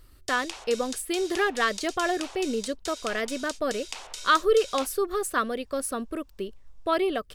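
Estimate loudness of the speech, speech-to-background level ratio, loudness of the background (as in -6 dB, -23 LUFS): -27.5 LUFS, 11.0 dB, -38.5 LUFS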